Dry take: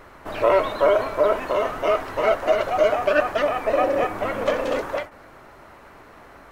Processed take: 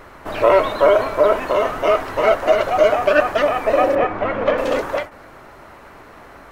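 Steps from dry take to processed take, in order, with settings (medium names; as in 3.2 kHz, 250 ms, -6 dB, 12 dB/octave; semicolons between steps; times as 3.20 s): 3.95–4.58 s: low-pass 2.9 kHz 12 dB/octave; trim +4.5 dB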